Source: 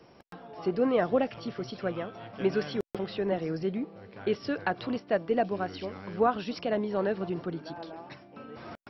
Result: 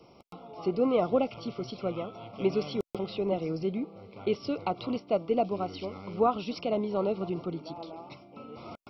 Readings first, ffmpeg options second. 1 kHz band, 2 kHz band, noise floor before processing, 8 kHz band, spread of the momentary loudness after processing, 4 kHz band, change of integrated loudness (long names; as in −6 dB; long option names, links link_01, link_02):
0.0 dB, −9.0 dB, −56 dBFS, can't be measured, 16 LU, 0.0 dB, 0.0 dB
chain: -af "asuperstop=centerf=1700:order=12:qfactor=2.6"